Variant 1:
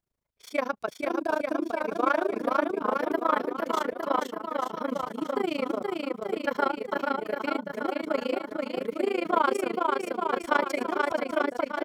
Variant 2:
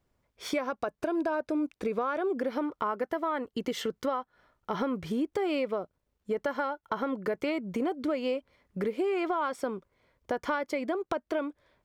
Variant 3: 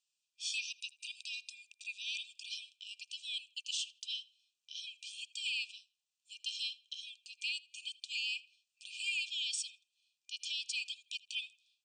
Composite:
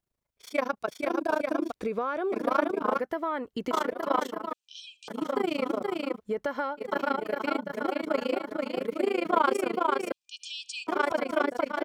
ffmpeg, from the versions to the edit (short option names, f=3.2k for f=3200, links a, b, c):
-filter_complex "[1:a]asplit=3[a][b][c];[2:a]asplit=2[d][e];[0:a]asplit=6[f][g][h][i][j][k];[f]atrim=end=1.722[l];[a]atrim=start=1.718:end=2.322[m];[g]atrim=start=2.318:end=2.992[n];[b]atrim=start=2.988:end=3.712[o];[h]atrim=start=3.708:end=4.532[p];[d]atrim=start=4.528:end=5.082[q];[i]atrim=start=5.078:end=6.21[r];[c]atrim=start=6.15:end=6.83[s];[j]atrim=start=6.77:end=10.122[t];[e]atrim=start=10.118:end=10.872[u];[k]atrim=start=10.868[v];[l][m]acrossfade=d=0.004:c1=hsin:c2=hsin[w];[w][n]acrossfade=d=0.004:c1=hsin:c2=hsin[x];[x][o]acrossfade=d=0.004:c1=hsin:c2=hsin[y];[y][p]acrossfade=d=0.004:c1=hsin:c2=hsin[z];[z][q]acrossfade=d=0.004:c1=hsin:c2=hsin[aa];[aa][r]acrossfade=d=0.004:c1=hsin:c2=hsin[ab];[ab][s]acrossfade=d=0.06:c1=tri:c2=tri[ac];[ac][t]acrossfade=d=0.06:c1=tri:c2=tri[ad];[ad][u]acrossfade=d=0.004:c1=hsin:c2=hsin[ae];[ae][v]acrossfade=d=0.004:c1=hsin:c2=hsin"